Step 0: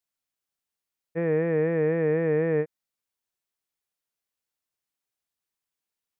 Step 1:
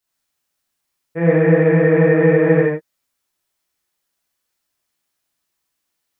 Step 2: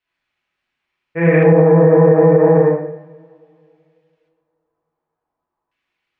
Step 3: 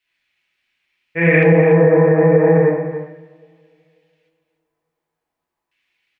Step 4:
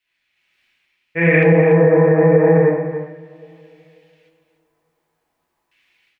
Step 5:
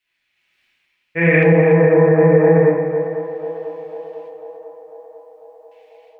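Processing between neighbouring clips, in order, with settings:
non-linear reverb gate 0.16 s flat, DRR -6.5 dB; gain +5 dB
LFO low-pass square 0.35 Hz 900–2500 Hz; two-slope reverb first 0.75 s, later 2.7 s, from -22 dB, DRR 3.5 dB; maximiser +2 dB; gain -1 dB
resonant high shelf 1600 Hz +7.5 dB, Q 1.5; on a send: echo 0.289 s -11 dB; on the sum: gain -1.5 dB
AGC gain up to 9.5 dB; gain -1 dB
narrowing echo 0.496 s, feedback 72%, band-pass 730 Hz, level -11 dB

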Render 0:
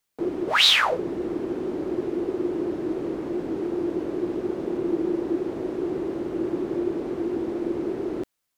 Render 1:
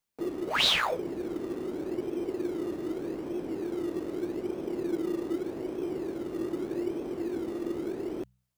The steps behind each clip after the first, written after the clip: de-hum 62.45 Hz, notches 3; in parallel at -12 dB: decimation with a swept rate 22×, swing 60% 0.82 Hz; on the sum: gain -7.5 dB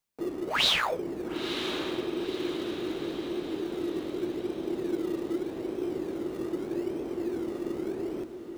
diffused feedback echo 0.969 s, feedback 51%, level -9 dB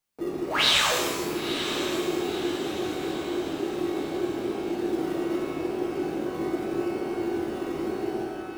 shimmer reverb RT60 1.2 s, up +12 st, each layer -8 dB, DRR -1.5 dB

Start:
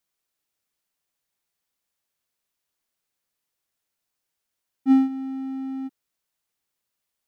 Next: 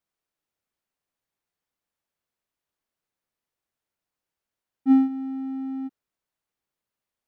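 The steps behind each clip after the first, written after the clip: high shelf 2600 Hz -10 dB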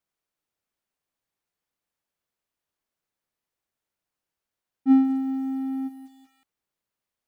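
lo-fi delay 0.188 s, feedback 35%, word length 8-bit, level -14.5 dB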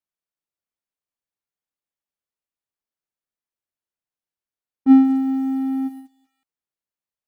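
gate -41 dBFS, range -15 dB; gain +6 dB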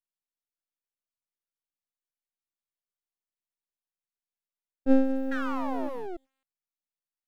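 painted sound fall, 5.31–6.17, 330–1700 Hz -26 dBFS; half-wave rectifier; gain -5.5 dB

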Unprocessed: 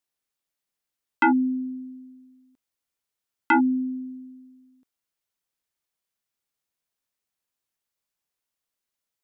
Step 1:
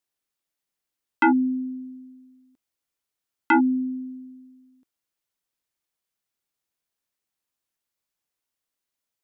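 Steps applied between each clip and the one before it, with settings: bell 320 Hz +3 dB 0.32 oct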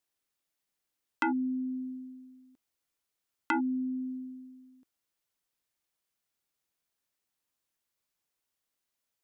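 compressor 2.5:1, threshold -33 dBFS, peak gain reduction 12 dB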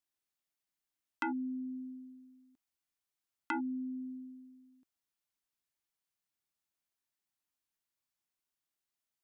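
bell 490 Hz -13 dB 0.22 oct; gain -6 dB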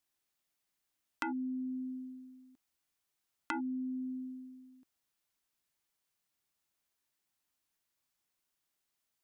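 compressor 2.5:1, threshold -43 dBFS, peak gain reduction 8 dB; gain +5.5 dB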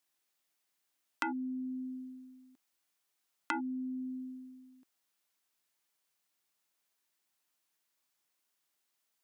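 HPF 290 Hz 6 dB/oct; gain +3 dB

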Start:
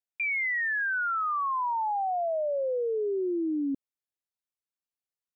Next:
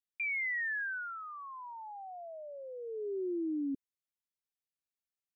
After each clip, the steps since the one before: band shelf 800 Hz -11.5 dB; gain -5.5 dB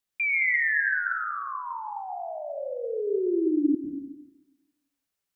plate-style reverb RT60 1.1 s, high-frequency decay 0.55×, pre-delay 85 ms, DRR 1.5 dB; gain +8.5 dB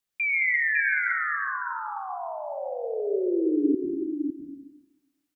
echo 0.555 s -6 dB

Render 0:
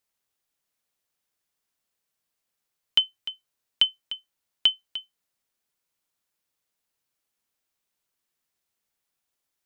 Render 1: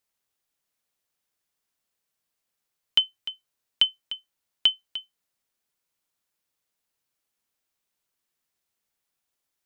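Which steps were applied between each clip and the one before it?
nothing audible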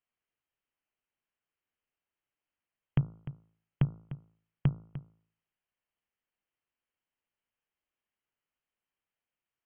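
inverted band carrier 3200 Hz; de-hum 54.67 Hz, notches 26; gain -5 dB

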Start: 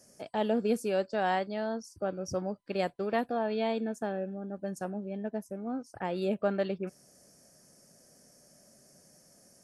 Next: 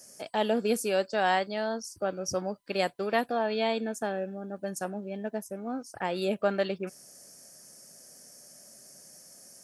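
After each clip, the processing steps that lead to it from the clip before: tilt +2 dB/oct; gain +4 dB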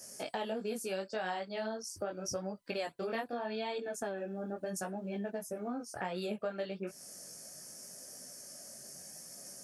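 chorus voices 2, 0.79 Hz, delay 19 ms, depth 3.6 ms; compressor 5:1, threshold -41 dBFS, peak gain reduction 16 dB; gain +5.5 dB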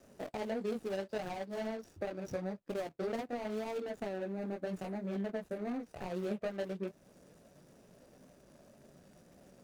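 median filter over 41 samples; wow and flutter 28 cents; gain +2 dB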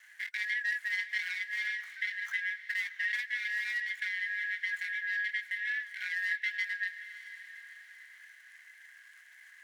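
four-band scrambler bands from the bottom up 4123; inverse Chebyshev high-pass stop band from 320 Hz, stop band 50 dB; diffused feedback echo 0.649 s, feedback 43%, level -13.5 dB; gain +3.5 dB

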